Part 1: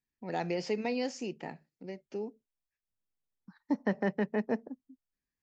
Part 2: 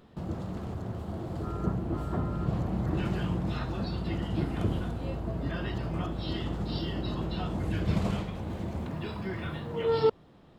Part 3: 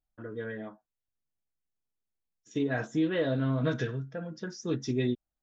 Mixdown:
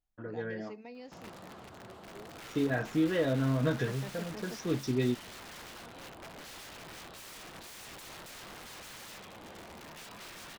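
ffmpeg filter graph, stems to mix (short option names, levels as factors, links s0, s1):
-filter_complex "[0:a]volume=0.178[s0];[1:a]highpass=f=1200:p=1,aeval=exprs='(mod(112*val(0)+1,2)-1)/112':c=same,adelay=950,volume=1[s1];[2:a]volume=0.944[s2];[s0][s1][s2]amix=inputs=3:normalize=0,highshelf=f=6200:g=-5.5"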